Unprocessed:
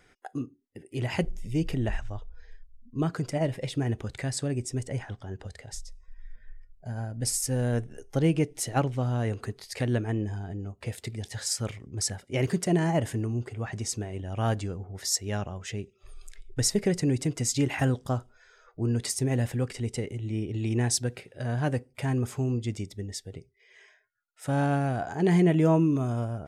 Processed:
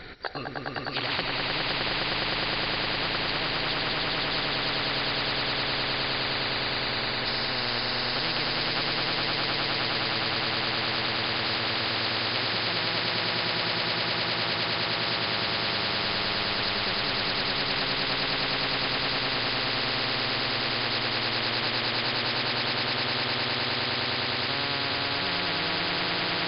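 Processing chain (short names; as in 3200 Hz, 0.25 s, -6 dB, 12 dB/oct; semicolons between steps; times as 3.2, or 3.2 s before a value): nonlinear frequency compression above 3600 Hz 4:1; swelling echo 0.103 s, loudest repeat 8, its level -3.5 dB; spectral compressor 10:1; gain -7.5 dB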